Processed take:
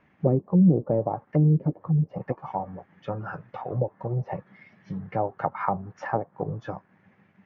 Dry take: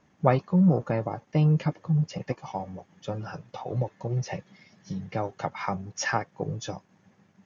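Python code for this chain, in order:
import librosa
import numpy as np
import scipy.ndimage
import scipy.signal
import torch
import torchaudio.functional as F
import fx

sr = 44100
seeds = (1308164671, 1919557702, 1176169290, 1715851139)

y = fx.envelope_lowpass(x, sr, base_hz=350.0, top_hz=2300.0, q=2.0, full_db=-19.5, direction='down')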